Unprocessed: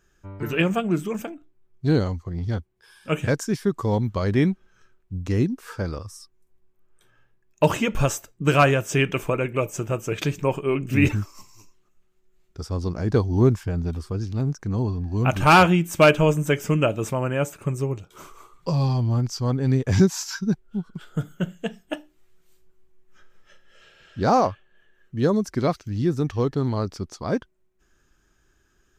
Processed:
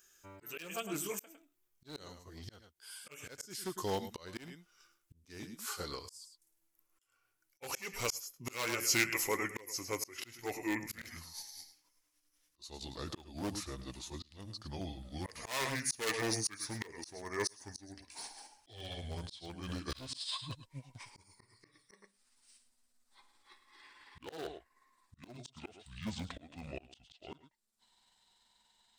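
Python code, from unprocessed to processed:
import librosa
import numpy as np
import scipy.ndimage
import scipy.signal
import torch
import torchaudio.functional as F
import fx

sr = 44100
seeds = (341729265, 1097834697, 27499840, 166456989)

y = fx.pitch_glide(x, sr, semitones=-9.5, runs='starting unshifted')
y = y + 10.0 ** (-13.5 / 20.0) * np.pad(y, (int(106 * sr / 1000.0), 0))[:len(y)]
y = np.clip(y, -10.0 ** (-16.5 / 20.0), 10.0 ** (-16.5 / 20.0))
y = scipy.signal.lfilter([1.0, -0.97], [1.0], y)
y = fx.auto_swell(y, sr, attack_ms=426.0)
y = fx.peak_eq(y, sr, hz=390.0, db=5.0, octaves=1.7)
y = F.gain(torch.from_numpy(y), 9.0).numpy()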